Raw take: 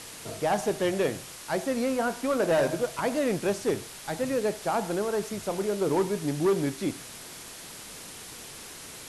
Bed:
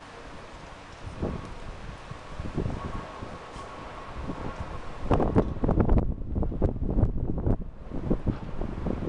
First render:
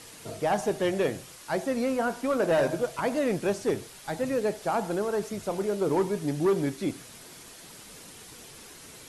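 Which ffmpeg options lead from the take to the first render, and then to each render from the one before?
-af "afftdn=nr=6:nf=-44"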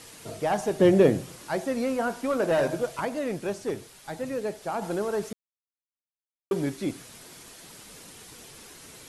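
-filter_complex "[0:a]asettb=1/sr,asplit=3[s0][s1][s2];[s0]atrim=end=0.794[s3];[s1]atrim=start=0.79:end=1.48,asetpts=PTS-STARTPTS,afade=t=in:d=0.004:c=qsin,afade=t=out:st=0.686:d=0.004:c=qsin,equalizer=f=200:w=0.36:g=11.5[s4];[s2]atrim=start=1.476[s5];[s3][s4]acrossfade=d=0.004:c1=hsin:c2=qsin[s6];[s6][s5]acrossfade=d=0.004:c1=qsin:c2=hsin,asplit=5[s7][s8][s9][s10][s11];[s7]atrim=end=3.052[s12];[s8]atrim=start=3.048:end=4.822,asetpts=PTS-STARTPTS,volume=0.668[s13];[s9]atrim=start=4.818:end=5.33,asetpts=PTS-STARTPTS,afade=t=out:st=0.508:d=0.004:c=hsin[s14];[s10]atrim=start=5.33:end=6.51,asetpts=PTS-STARTPTS,volume=0[s15];[s11]atrim=start=6.51,asetpts=PTS-STARTPTS,afade=t=in:d=0.004:c=hsin[s16];[s12][s13]acrossfade=d=0.004:c1=hsin:c2=hsin[s17];[s14][s15][s16]concat=n=3:v=0:a=1[s18];[s17][s18]acrossfade=d=0.004:c1=hsin:c2=hsin"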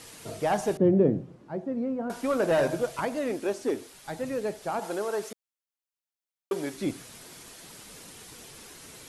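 -filter_complex "[0:a]asettb=1/sr,asplit=3[s0][s1][s2];[s0]atrim=end=0.774[s3];[s1]atrim=start=0.77:end=2.1,asetpts=PTS-STARTPTS,afade=t=in:d=0.004:c=qsin,afade=t=out:st=1.326:d=0.004:c=qsin,bandpass=f=200:t=q:w=0.76[s4];[s2]atrim=start=2.096[s5];[s3][s4]acrossfade=d=0.004:c1=hsin:c2=qsin[s6];[s6][s5]acrossfade=d=0.004:c1=qsin:c2=hsin,asettb=1/sr,asplit=3[s7][s8][s9];[s7]atrim=end=3.304[s10];[s8]atrim=start=3.3:end=3.94,asetpts=PTS-STARTPTS,afade=t=in:d=0.004:c=qsin,afade=t=out:st=0.636:d=0.004:c=qsin,lowshelf=f=210:t=q:w=3:g=-6.5[s11];[s9]atrim=start=3.936[s12];[s10][s11]acrossfade=d=0.004:c1=hsin:c2=qsin[s13];[s13][s12]acrossfade=d=0.004:c1=qsin:c2=hsin,asettb=1/sr,asplit=3[s14][s15][s16];[s14]atrim=end=4.794[s17];[s15]atrim=start=4.79:end=6.74,asetpts=PTS-STARTPTS,afade=t=in:d=0.004:c=qsin,afade=t=out:st=1.946:d=0.004:c=qsin,bass=f=250:g=-14,treble=f=4000:g=1[s18];[s16]atrim=start=6.736[s19];[s17][s18]acrossfade=d=0.004:c1=hsin:c2=qsin[s20];[s20][s19]acrossfade=d=0.004:c1=qsin:c2=hsin"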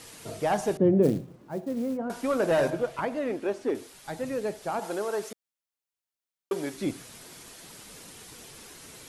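-filter_complex "[0:a]asplit=3[s0][s1][s2];[s0]afade=t=out:st=1.02:d=0.02[s3];[s1]acrusher=bits=6:mode=log:mix=0:aa=0.000001,afade=t=in:st=1.02:d=0.02,afade=t=out:st=1.96:d=0.02[s4];[s2]afade=t=in:st=1.96:d=0.02[s5];[s3][s4][s5]amix=inputs=3:normalize=0,asettb=1/sr,asplit=3[s6][s7][s8];[s6]atrim=end=2.704[s9];[s7]atrim=start=2.7:end=3.75,asetpts=PTS-STARTPTS,afade=t=in:d=0.004:c=qsin,afade=t=out:st=1.046:d=0.004:c=qsin,bass=f=250:g=-1,treble=f=4000:g=-10[s10];[s8]atrim=start=3.746[s11];[s9][s10]acrossfade=d=0.004:c1=hsin:c2=qsin[s12];[s12][s11]acrossfade=d=0.004:c1=qsin:c2=hsin"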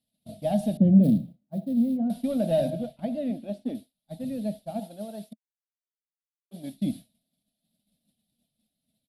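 -af "firequalizer=gain_entry='entry(120,0);entry(220,12);entry(390,-20);entry(630,3);entry(1000,-25);entry(3700,2);entry(6400,-18);entry(10000,-1)':delay=0.05:min_phase=1,agate=range=0.0224:threshold=0.0316:ratio=3:detection=peak"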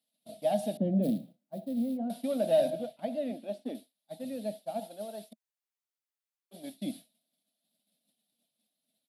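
-af "highpass=360"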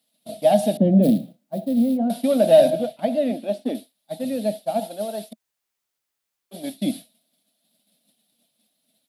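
-af "volume=3.98"

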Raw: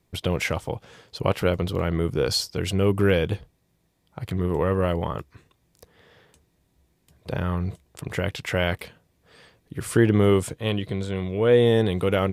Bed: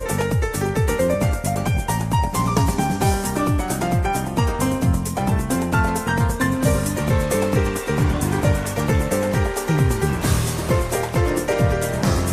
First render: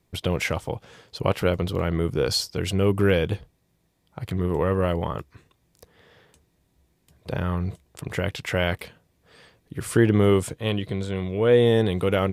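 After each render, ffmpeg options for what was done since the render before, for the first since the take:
-af anull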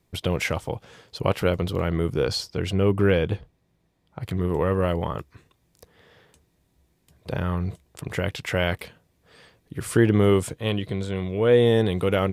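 -filter_complex "[0:a]asettb=1/sr,asplit=3[s0][s1][s2];[s0]atrim=end=2.254[s3];[s1]atrim=start=2.25:end=4.23,asetpts=PTS-STARTPTS,afade=t=in:d=0.004:c=qsin,afade=t=out:st=1.976:d=0.004:c=qsin,aemphasis=mode=reproduction:type=cd[s4];[s2]atrim=start=4.226[s5];[s3][s4]acrossfade=d=0.004:c1=hsin:c2=qsin[s6];[s6][s5]acrossfade=d=0.004:c1=qsin:c2=hsin"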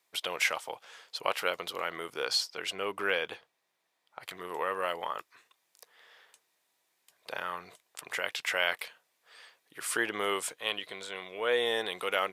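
-af "highpass=920"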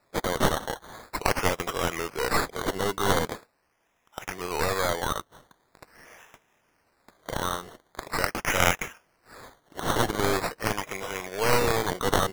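-af "acrusher=samples=14:mix=1:aa=0.000001:lfo=1:lforange=8.4:lforate=0.43,aeval=exprs='0.282*(cos(1*acos(clip(val(0)/0.282,-1,1)))-cos(1*PI/2))+0.126*(cos(6*acos(clip(val(0)/0.282,-1,1)))-cos(6*PI/2))+0.141*(cos(7*acos(clip(val(0)/0.282,-1,1)))-cos(7*PI/2))':c=same"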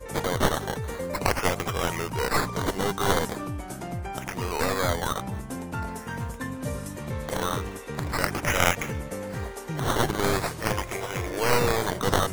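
-filter_complex "[1:a]volume=0.211[s0];[0:a][s0]amix=inputs=2:normalize=0"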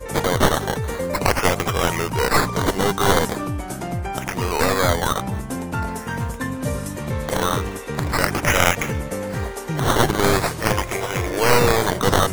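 -af "volume=2.24,alimiter=limit=0.891:level=0:latency=1"

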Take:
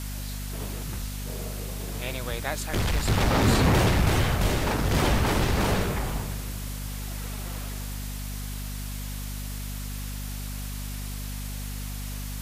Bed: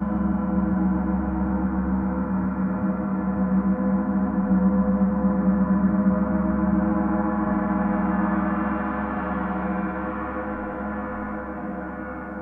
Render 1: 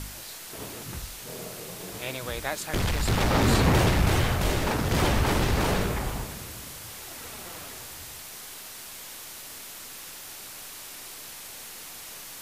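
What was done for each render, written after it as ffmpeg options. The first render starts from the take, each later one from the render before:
-af "bandreject=f=50:t=h:w=4,bandreject=f=100:t=h:w=4,bandreject=f=150:t=h:w=4,bandreject=f=200:t=h:w=4,bandreject=f=250:t=h:w=4"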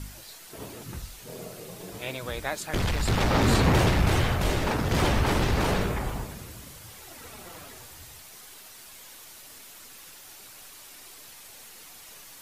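-af "afftdn=nr=7:nf=-42"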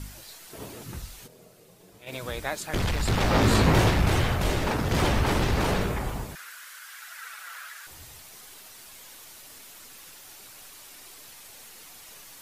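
-filter_complex "[0:a]asplit=3[s0][s1][s2];[s0]afade=t=out:st=1.26:d=0.02[s3];[s1]agate=range=0.224:threshold=0.0224:ratio=16:release=100:detection=peak,afade=t=in:st=1.26:d=0.02,afade=t=out:st=2.11:d=0.02[s4];[s2]afade=t=in:st=2.11:d=0.02[s5];[s3][s4][s5]amix=inputs=3:normalize=0,asettb=1/sr,asplit=3[s6][s7][s8];[s6]atrim=end=3.224[s9];[s7]atrim=start=3.22:end=3.93,asetpts=PTS-STARTPTS,afade=t=in:d=0.004:c=qsin,afade=t=out:st=0.706:d=0.004:c=qsin,asplit=2[s10][s11];[s11]adelay=19,volume=0.501[s12];[s10][s12]amix=inputs=2:normalize=0,atrim=end_sample=31311[s13];[s8]atrim=start=3.926[s14];[s9][s13]acrossfade=d=0.004:c1=hsin:c2=qsin[s15];[s15][s14]acrossfade=d=0.004:c1=qsin:c2=hsin,asettb=1/sr,asplit=3[s16][s17][s18];[s16]atrim=end=6.354[s19];[s17]atrim=start=6.35:end=7.87,asetpts=PTS-STARTPTS,afade=t=in:d=0.004:c=qsin,afade=t=out:st=1.516:d=0.004:c=qsin,highpass=f=1500:t=q:w=4.8[s20];[s18]atrim=start=7.866[s21];[s19][s20]acrossfade=d=0.004:c1=hsin:c2=qsin[s22];[s22][s21]acrossfade=d=0.004:c1=qsin:c2=hsin"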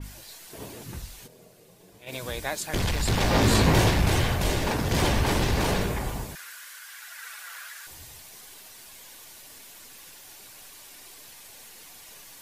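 -af "bandreject=f=1300:w=11,adynamicequalizer=threshold=0.00562:dfrequency=3500:dqfactor=0.7:tfrequency=3500:tqfactor=0.7:attack=5:release=100:ratio=0.375:range=2:mode=boostabove:tftype=highshelf"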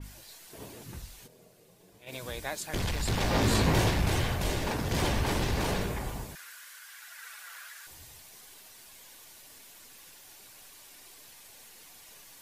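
-af "volume=0.562"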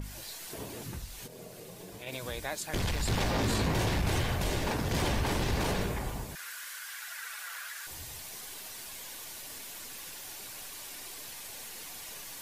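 -af "alimiter=limit=0.0891:level=0:latency=1:release=32,acompressor=mode=upward:threshold=0.02:ratio=2.5"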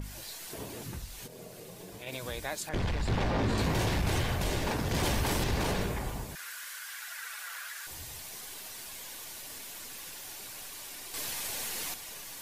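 -filter_complex "[0:a]asettb=1/sr,asplit=3[s0][s1][s2];[s0]atrim=end=2.694[s3];[s1]atrim=start=2.69:end=3.58,asetpts=PTS-STARTPTS,afade=t=in:d=0.004:c=qsin,afade=t=out:st=0.886:d=0.004:c=qsin,aemphasis=mode=reproduction:type=75fm[s4];[s2]atrim=start=3.576[s5];[s3][s4]acrossfade=d=0.004:c1=hsin:c2=qsin[s6];[s6][s5]acrossfade=d=0.004:c1=qsin:c2=hsin,asettb=1/sr,asplit=3[s7][s8][s9];[s7]atrim=end=5.034[s10];[s8]atrim=start=5.03:end=5.44,asetpts=PTS-STARTPTS,afade=t=in:d=0.004:c=qsin,afade=t=out:st=0.406:d=0.004:c=qsin,highshelf=f=6800:g=8.5[s11];[s9]atrim=start=5.436[s12];[s10][s11]acrossfade=d=0.004:c1=hsin:c2=qsin[s13];[s13][s12]acrossfade=d=0.004:c1=qsin:c2=hsin,asplit=3[s14][s15][s16];[s14]atrim=end=11.142[s17];[s15]atrim=start=11.138:end=11.942,asetpts=PTS-STARTPTS,volume=2.37[s18];[s16]atrim=start=11.938[s19];[s17][s18]acrossfade=d=0.004:c1=hsin:c2=hsin[s20];[s20][s19]acrossfade=d=0.004:c1=hsin:c2=hsin"

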